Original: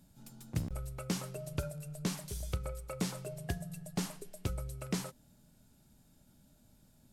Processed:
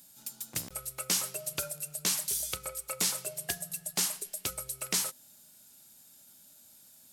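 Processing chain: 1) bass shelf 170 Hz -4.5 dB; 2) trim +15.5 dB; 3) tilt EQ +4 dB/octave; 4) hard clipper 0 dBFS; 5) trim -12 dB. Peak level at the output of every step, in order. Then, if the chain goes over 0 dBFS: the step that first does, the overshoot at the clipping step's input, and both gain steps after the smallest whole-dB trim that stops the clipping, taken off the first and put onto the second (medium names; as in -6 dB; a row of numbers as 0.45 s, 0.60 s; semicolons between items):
-21.0 dBFS, -5.5 dBFS, -2.5 dBFS, -2.5 dBFS, -14.5 dBFS; nothing clips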